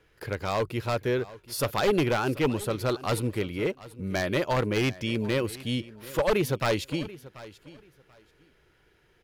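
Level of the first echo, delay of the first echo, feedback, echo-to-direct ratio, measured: -18.5 dB, 735 ms, 20%, -18.5 dB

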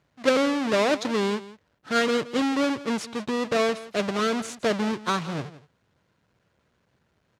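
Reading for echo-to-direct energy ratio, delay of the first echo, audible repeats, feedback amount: -17.0 dB, 169 ms, 1, no regular repeats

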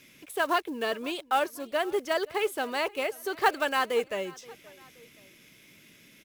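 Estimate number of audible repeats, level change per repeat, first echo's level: 2, -6.0 dB, -22.5 dB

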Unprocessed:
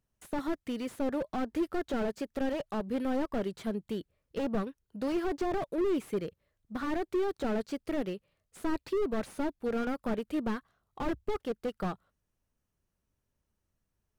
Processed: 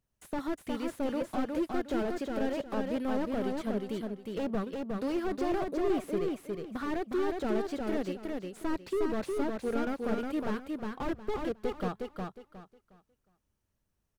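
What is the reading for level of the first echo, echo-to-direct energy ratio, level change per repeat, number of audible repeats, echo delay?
-3.5 dB, -3.0 dB, -11.5 dB, 3, 361 ms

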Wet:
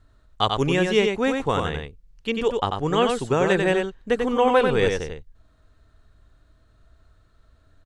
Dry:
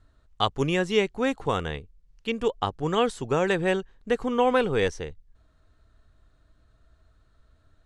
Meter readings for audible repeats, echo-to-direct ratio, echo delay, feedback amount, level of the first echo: 1, -4.5 dB, 93 ms, no regular repeats, -4.5 dB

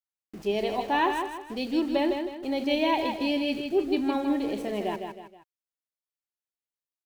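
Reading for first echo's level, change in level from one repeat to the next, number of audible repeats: -6.0 dB, -8.0 dB, 3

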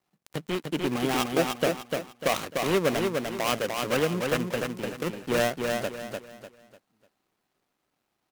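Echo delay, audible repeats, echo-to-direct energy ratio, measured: 298 ms, 4, -3.5 dB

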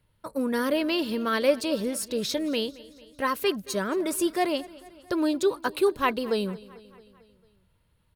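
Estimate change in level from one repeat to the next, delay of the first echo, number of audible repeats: -4.5 dB, 223 ms, 4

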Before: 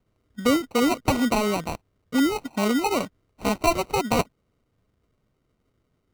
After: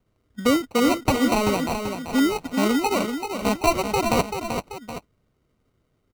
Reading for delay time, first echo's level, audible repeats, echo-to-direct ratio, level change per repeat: 386 ms, -7.0 dB, 2, -6.0 dB, -6.5 dB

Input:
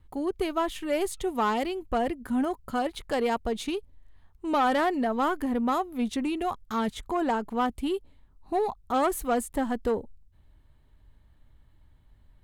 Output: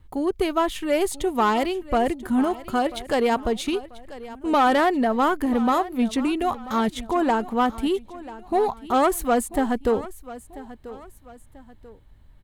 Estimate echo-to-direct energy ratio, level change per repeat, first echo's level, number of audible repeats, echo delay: -16.5 dB, -8.5 dB, -17.0 dB, 2, 989 ms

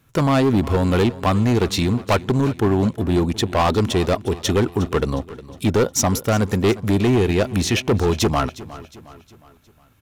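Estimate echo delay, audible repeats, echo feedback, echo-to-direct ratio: 360 ms, 3, 46%, -16.0 dB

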